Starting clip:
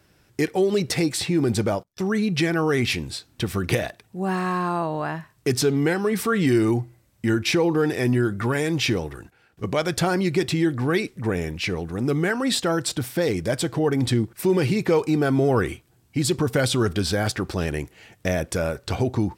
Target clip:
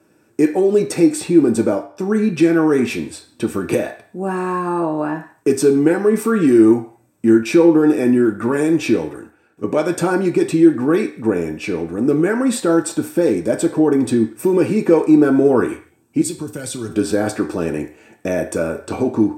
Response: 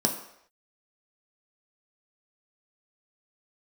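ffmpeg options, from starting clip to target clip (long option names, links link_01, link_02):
-filter_complex "[0:a]asettb=1/sr,asplit=3[link_01][link_02][link_03];[link_01]atrim=end=16.214[link_04];[link_02]atrim=start=16.21:end=16.89,asetpts=PTS-STARTPTS,afade=type=in:duration=0.004:curve=qsin,afade=type=out:start_time=0.676:duration=0.004:curve=qsin,acrossover=split=130|3000[link_05][link_06][link_07];[link_06]acompressor=threshold=-41dB:ratio=2.5[link_08];[link_05][link_08][link_07]amix=inputs=3:normalize=0[link_09];[link_03]atrim=start=16.886[link_10];[link_04][link_09]acrossfade=duration=0.004:curve1=hsin:curve2=qsin[link_11];[link_11][link_10]acrossfade=duration=0.004:curve1=qsin:curve2=hsin[link_12];[1:a]atrim=start_sample=2205,asetrate=66150,aresample=44100[link_13];[link_12][link_13]afir=irnorm=-1:irlink=0,volume=-6.5dB"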